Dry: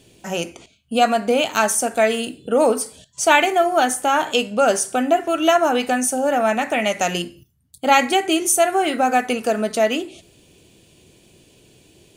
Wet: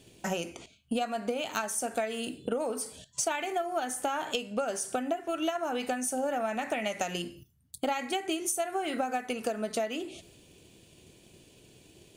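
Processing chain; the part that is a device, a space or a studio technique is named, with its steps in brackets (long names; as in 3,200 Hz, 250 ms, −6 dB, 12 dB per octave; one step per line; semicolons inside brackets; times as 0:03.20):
drum-bus smash (transient designer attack +7 dB, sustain +2 dB; downward compressor 8 to 1, threshold −22 dBFS, peak gain reduction 16.5 dB; soft clipping −11 dBFS, distortion −27 dB)
level −5.5 dB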